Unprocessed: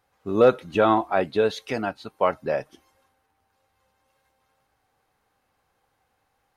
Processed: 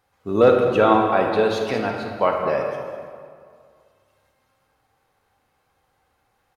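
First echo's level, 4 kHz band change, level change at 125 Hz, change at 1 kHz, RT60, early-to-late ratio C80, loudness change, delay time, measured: -13.5 dB, +3.0 dB, +4.5 dB, +4.0 dB, 2.1 s, 4.0 dB, +3.5 dB, 0.202 s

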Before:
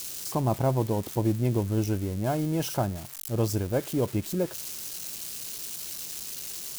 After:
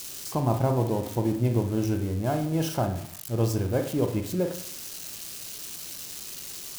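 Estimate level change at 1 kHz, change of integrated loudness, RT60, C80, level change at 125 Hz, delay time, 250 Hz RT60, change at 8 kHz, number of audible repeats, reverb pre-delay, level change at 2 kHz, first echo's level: +1.0 dB, +1.0 dB, 0.55 s, 13.0 dB, +1.0 dB, none, 0.60 s, -1.5 dB, none, 28 ms, +1.0 dB, none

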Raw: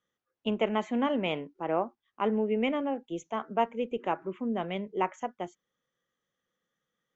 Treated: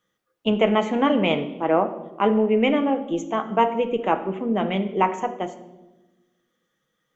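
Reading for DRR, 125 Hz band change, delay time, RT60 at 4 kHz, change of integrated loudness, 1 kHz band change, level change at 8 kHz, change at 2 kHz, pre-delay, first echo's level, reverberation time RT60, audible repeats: 6.5 dB, +10.0 dB, none, 0.85 s, +9.0 dB, +9.0 dB, n/a, +9.0 dB, 6 ms, none, 1.1 s, none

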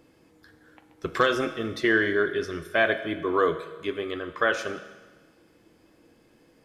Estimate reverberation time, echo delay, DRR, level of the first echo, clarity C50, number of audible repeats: 1.3 s, none, 9.0 dB, none, 11.0 dB, none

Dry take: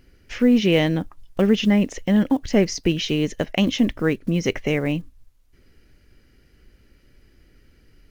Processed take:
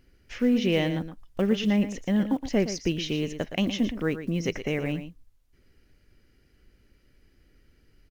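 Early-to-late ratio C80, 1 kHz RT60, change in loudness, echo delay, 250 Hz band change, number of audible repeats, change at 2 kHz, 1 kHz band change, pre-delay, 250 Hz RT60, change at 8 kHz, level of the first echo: none, none, -6.0 dB, 0.117 s, -6.0 dB, 1, -6.0 dB, -6.0 dB, none, none, n/a, -11.0 dB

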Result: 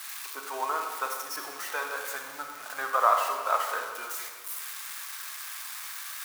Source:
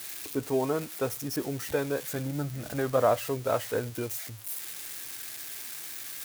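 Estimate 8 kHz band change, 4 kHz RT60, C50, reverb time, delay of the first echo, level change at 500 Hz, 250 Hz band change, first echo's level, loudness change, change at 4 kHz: +0.5 dB, 1.1 s, 4.0 dB, 1.6 s, none, -8.0 dB, -20.0 dB, none, 0.0 dB, +2.0 dB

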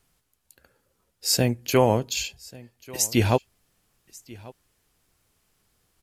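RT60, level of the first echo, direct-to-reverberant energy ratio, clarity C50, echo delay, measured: none, -22.0 dB, none, none, 1.139 s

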